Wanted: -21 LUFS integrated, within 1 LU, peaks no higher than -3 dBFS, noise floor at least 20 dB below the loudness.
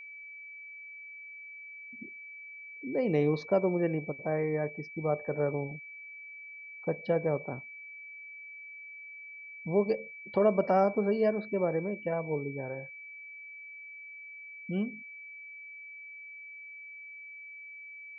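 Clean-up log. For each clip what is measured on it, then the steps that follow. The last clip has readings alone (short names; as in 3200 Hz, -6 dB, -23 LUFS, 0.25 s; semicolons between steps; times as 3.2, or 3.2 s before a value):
steady tone 2300 Hz; tone level -44 dBFS; loudness -31.5 LUFS; peak -14.0 dBFS; loudness target -21.0 LUFS
-> notch 2300 Hz, Q 30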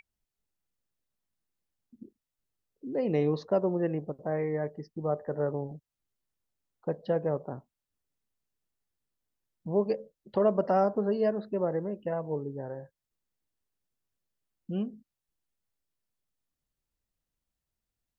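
steady tone none; loudness -31.0 LUFS; peak -14.0 dBFS; loudness target -21.0 LUFS
-> gain +10 dB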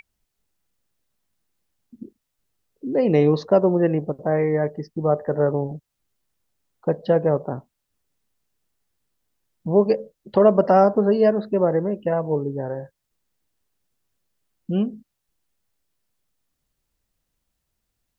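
loudness -21.0 LUFS; peak -4.0 dBFS; noise floor -79 dBFS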